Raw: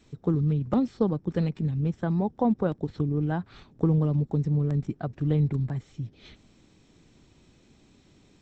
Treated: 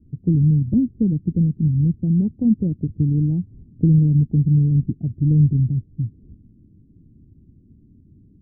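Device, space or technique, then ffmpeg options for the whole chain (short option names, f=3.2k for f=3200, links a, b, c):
the neighbour's flat through the wall: -af "lowpass=f=280:w=0.5412,lowpass=f=280:w=1.3066,equalizer=f=90:t=o:w=0.77:g=6,volume=8dB"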